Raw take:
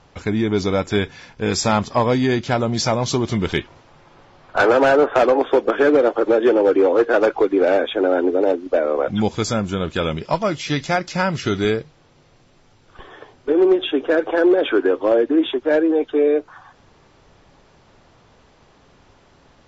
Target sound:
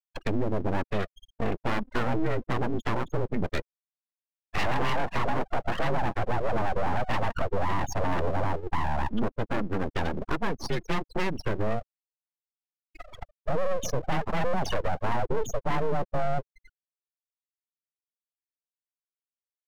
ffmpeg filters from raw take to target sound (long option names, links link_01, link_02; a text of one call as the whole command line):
ffmpeg -i in.wav -af "asoftclip=type=tanh:threshold=-15.5dB,highpass=frequency=180:width_type=q:width=0.5412,highpass=frequency=180:width_type=q:width=1.307,lowpass=frequency=3500:width_type=q:width=0.5176,lowpass=frequency=3500:width_type=q:width=0.7071,lowpass=frequency=3500:width_type=q:width=1.932,afreqshift=-97,acompressor=threshold=-39dB:ratio=2,afftfilt=real='re*gte(hypot(re,im),0.0355)':imag='im*gte(hypot(re,im),0.0355)':win_size=1024:overlap=0.75,aeval=exprs='abs(val(0))':channel_layout=same,aeval=exprs='0.0708*(cos(1*acos(clip(val(0)/0.0708,-1,1)))-cos(1*PI/2))+0.00447*(cos(6*acos(clip(val(0)/0.0708,-1,1)))-cos(6*PI/2))':channel_layout=same,adynamicequalizer=threshold=0.00224:dfrequency=250:dqfactor=0.89:tfrequency=250:tqfactor=0.89:attack=5:release=100:ratio=0.375:range=1.5:mode=boostabove:tftype=bell,volume=6.5dB" out.wav